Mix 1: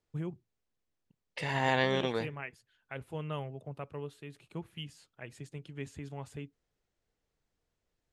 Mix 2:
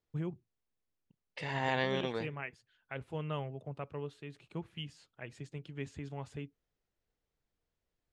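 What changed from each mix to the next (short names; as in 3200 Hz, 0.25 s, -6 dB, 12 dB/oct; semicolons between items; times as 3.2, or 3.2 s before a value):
second voice -4.0 dB; master: add LPF 6600 Hz 12 dB/oct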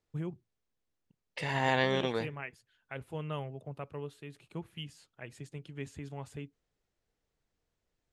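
second voice +4.0 dB; master: remove LPF 6600 Hz 12 dB/oct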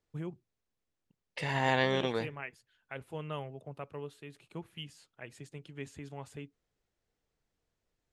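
first voice: add low shelf 140 Hz -7 dB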